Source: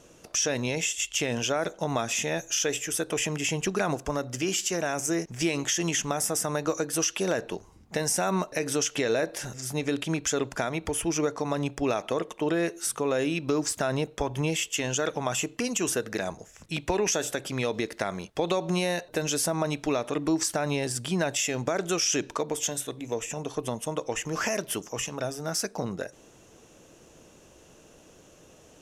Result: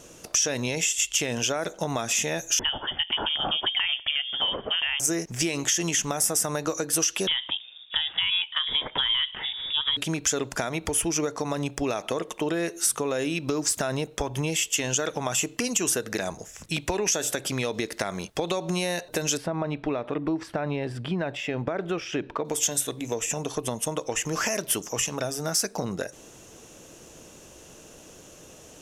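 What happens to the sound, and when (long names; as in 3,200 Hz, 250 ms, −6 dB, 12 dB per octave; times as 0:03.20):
0:02.59–0:05.00: voice inversion scrambler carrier 3,400 Hz
0:07.27–0:09.97: voice inversion scrambler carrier 3,600 Hz
0:19.37–0:22.45: high-frequency loss of the air 430 metres
whole clip: downward compressor 2.5 to 1, threshold −31 dBFS; high-shelf EQ 4,300 Hz +6.5 dB; level +4.5 dB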